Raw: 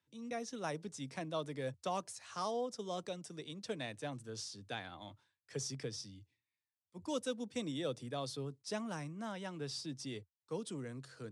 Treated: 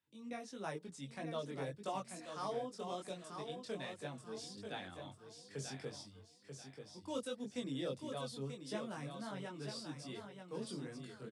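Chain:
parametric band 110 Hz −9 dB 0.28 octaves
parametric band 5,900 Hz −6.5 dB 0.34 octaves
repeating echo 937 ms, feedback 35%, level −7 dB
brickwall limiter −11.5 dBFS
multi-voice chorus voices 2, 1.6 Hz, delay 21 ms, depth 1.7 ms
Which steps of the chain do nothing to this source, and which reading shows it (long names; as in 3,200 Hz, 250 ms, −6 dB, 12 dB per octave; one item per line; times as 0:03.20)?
brickwall limiter −11.5 dBFS: peak of its input −25.5 dBFS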